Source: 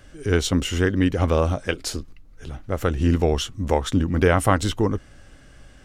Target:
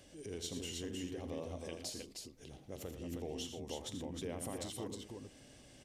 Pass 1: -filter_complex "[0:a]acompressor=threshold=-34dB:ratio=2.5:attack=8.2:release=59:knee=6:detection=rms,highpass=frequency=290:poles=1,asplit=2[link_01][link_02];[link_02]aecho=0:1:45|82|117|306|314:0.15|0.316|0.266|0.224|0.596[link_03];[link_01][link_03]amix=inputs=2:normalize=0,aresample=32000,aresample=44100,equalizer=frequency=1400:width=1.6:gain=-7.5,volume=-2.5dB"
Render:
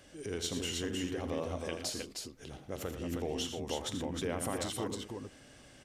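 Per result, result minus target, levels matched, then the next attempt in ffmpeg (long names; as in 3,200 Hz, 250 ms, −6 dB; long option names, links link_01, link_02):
downward compressor: peak gain reduction −5.5 dB; 1,000 Hz band +2.5 dB
-filter_complex "[0:a]acompressor=threshold=-43.5dB:ratio=2.5:attack=8.2:release=59:knee=6:detection=rms,highpass=frequency=290:poles=1,asplit=2[link_01][link_02];[link_02]aecho=0:1:45|82|117|306|314:0.15|0.316|0.266|0.224|0.596[link_03];[link_01][link_03]amix=inputs=2:normalize=0,aresample=32000,aresample=44100,equalizer=frequency=1400:width=1.6:gain=-7.5,volume=-2.5dB"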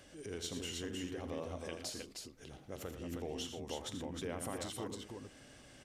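1,000 Hz band +2.5 dB
-filter_complex "[0:a]acompressor=threshold=-43.5dB:ratio=2.5:attack=8.2:release=59:knee=6:detection=rms,highpass=frequency=290:poles=1,asplit=2[link_01][link_02];[link_02]aecho=0:1:45|82|117|306|314:0.15|0.316|0.266|0.224|0.596[link_03];[link_01][link_03]amix=inputs=2:normalize=0,aresample=32000,aresample=44100,equalizer=frequency=1400:width=1.6:gain=-17,volume=-2.5dB"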